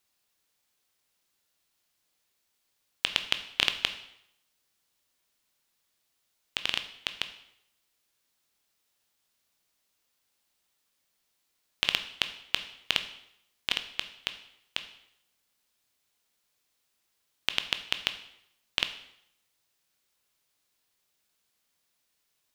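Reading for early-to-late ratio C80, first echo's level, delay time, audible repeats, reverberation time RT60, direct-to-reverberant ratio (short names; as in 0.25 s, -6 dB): 14.5 dB, none, none, none, 0.75 s, 8.5 dB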